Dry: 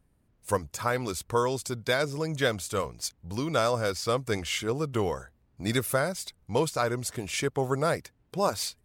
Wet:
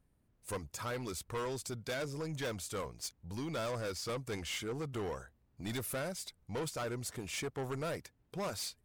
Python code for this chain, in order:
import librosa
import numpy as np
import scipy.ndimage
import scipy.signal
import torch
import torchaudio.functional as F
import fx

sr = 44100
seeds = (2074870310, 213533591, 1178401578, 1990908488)

y = 10.0 ** (-28.0 / 20.0) * np.tanh(x / 10.0 ** (-28.0 / 20.0))
y = y * librosa.db_to_amplitude(-5.5)